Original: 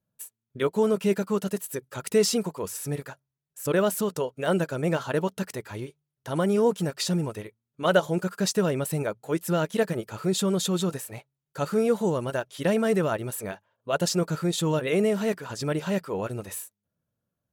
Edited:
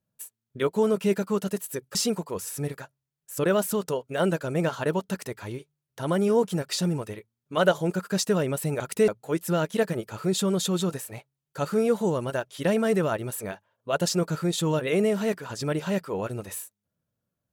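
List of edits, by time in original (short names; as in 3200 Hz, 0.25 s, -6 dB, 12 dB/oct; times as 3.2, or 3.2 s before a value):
1.95–2.23 move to 9.08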